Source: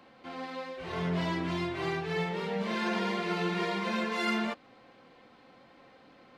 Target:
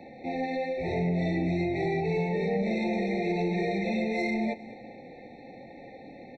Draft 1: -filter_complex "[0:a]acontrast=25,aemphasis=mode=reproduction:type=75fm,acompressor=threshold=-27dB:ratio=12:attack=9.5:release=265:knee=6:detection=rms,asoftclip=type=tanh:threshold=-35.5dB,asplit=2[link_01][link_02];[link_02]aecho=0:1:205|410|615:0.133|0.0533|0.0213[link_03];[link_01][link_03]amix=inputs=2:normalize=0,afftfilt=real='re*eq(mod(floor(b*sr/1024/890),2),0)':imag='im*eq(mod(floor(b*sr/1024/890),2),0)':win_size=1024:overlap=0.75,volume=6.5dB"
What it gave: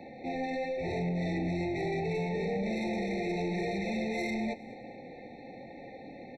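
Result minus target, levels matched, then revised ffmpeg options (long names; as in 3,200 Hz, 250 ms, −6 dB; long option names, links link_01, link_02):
soft clipping: distortion +8 dB
-filter_complex "[0:a]acontrast=25,aemphasis=mode=reproduction:type=75fm,acompressor=threshold=-27dB:ratio=12:attack=9.5:release=265:knee=6:detection=rms,asoftclip=type=tanh:threshold=-27.5dB,asplit=2[link_01][link_02];[link_02]aecho=0:1:205|410|615:0.133|0.0533|0.0213[link_03];[link_01][link_03]amix=inputs=2:normalize=0,afftfilt=real='re*eq(mod(floor(b*sr/1024/890),2),0)':imag='im*eq(mod(floor(b*sr/1024/890),2),0)':win_size=1024:overlap=0.75,volume=6.5dB"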